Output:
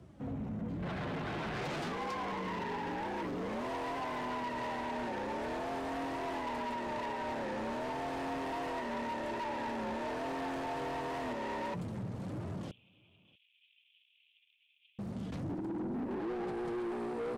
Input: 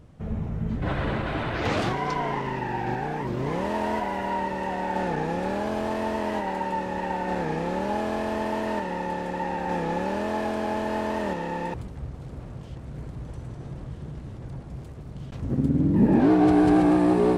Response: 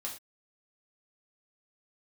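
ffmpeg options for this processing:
-filter_complex "[0:a]dynaudnorm=f=180:g=17:m=2.11,alimiter=limit=0.224:level=0:latency=1:release=325,acompressor=threshold=0.0447:ratio=2.5,flanger=delay=3:depth=9.2:regen=49:speed=0.32:shape=triangular,volume=23.7,asoftclip=hard,volume=0.0422,afreqshift=53,asoftclip=type=tanh:threshold=0.02,asettb=1/sr,asplit=3[s0][s1][s2];[s0]atrim=end=12.714[s3];[s1]atrim=start=12.71:end=14.99,asetpts=PTS-STARTPTS,afade=t=in:d=0.004:c=qsin,afade=t=out:st=2.276:d=0.004:c=qsin,asuperpass=centerf=2900:order=8:qfactor=2.7[s4];[s2]atrim=start=14.986[s5];[s3][s4]acrossfade=d=0.004:c1=hsin:c2=qsin[s6];[s6][s5]acrossfade=d=0.004:c1=qsin:c2=hsin,asplit=2[s7][s8];[s8]adelay=641.4,volume=0.0398,highshelf=f=4000:g=-14.4[s9];[s7][s9]amix=inputs=2:normalize=0"

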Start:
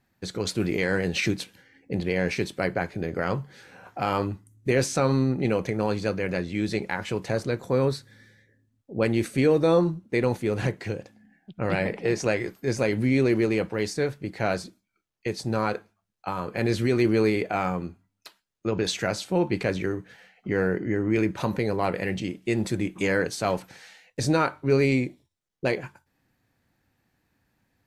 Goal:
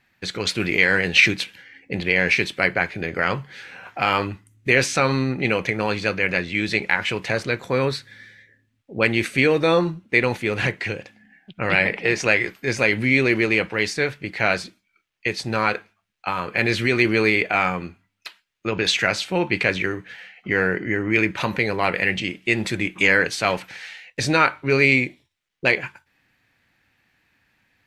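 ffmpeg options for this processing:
-af "equalizer=f=2400:t=o:w=1.9:g=14.5"

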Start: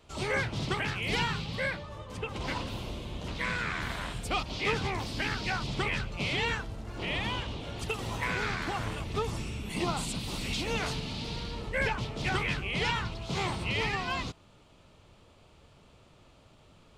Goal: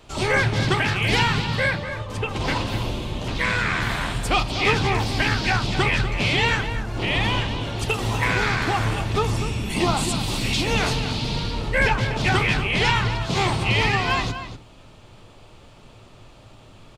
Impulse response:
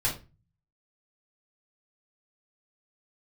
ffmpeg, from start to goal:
-filter_complex "[0:a]asplit=2[s0][s1];[s1]adelay=244.9,volume=0.316,highshelf=f=4000:g=-5.51[s2];[s0][s2]amix=inputs=2:normalize=0,asplit=2[s3][s4];[1:a]atrim=start_sample=2205[s5];[s4][s5]afir=irnorm=-1:irlink=0,volume=0.119[s6];[s3][s6]amix=inputs=2:normalize=0,volume=2.82"

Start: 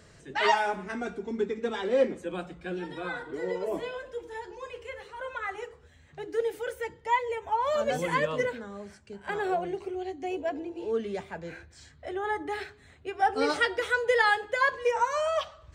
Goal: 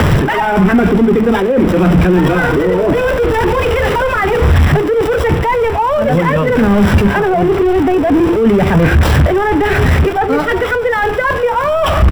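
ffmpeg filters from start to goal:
-filter_complex "[0:a]aeval=exprs='val(0)+0.5*0.0299*sgn(val(0))':c=same,areverse,acompressor=threshold=0.02:ratio=8,areverse,asoftclip=type=hard:threshold=0.0299,acrossover=split=220[s0][s1];[s1]acompressor=threshold=0.00447:ratio=4[s2];[s0][s2]amix=inputs=2:normalize=0,acrossover=split=480|3000[s3][s4][s5];[s5]acrusher=samples=20:mix=1:aa=0.000001[s6];[s3][s4][s6]amix=inputs=3:normalize=0,atempo=1.3,alimiter=level_in=53.1:limit=0.891:release=50:level=0:latency=1,volume=0.891"

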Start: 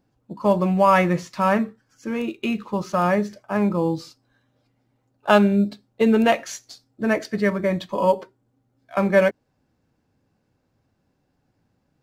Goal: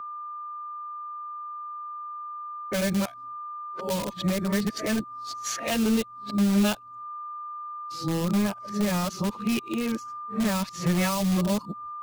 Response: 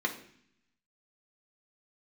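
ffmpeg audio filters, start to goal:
-filter_complex "[0:a]areverse,agate=range=0.0224:threshold=0.00355:ratio=3:detection=peak,asplit=2[s0][s1];[s1]aeval=exprs='(mod(7.94*val(0)+1,2)-1)/7.94':c=same,volume=0.355[s2];[s0][s2]amix=inputs=2:normalize=0,aeval=exprs='val(0)+0.02*sin(2*PI*1200*n/s)':c=same,acrossover=split=210|3000[s3][s4][s5];[s4]acompressor=threshold=0.0282:ratio=4[s6];[s3][s6][s5]amix=inputs=3:normalize=0"

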